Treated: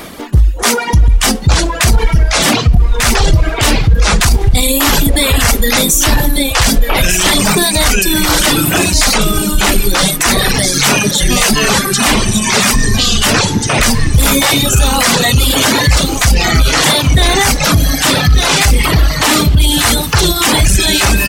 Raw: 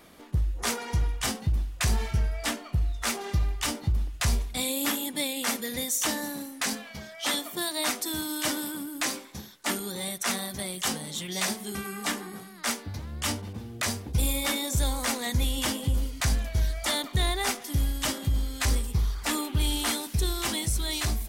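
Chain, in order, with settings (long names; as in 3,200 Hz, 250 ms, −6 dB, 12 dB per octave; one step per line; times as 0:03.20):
single-tap delay 1,193 ms −7 dB
delay with pitch and tempo change per echo 594 ms, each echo −6 semitones, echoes 3
reversed playback
upward compression, threshold −40 dBFS
reversed playback
reverb reduction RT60 1.2 s
in parallel at −4 dB: hard clipping −21.5 dBFS, distortion −15 dB
on the sum: boost into a limiter +21 dB
level −1 dB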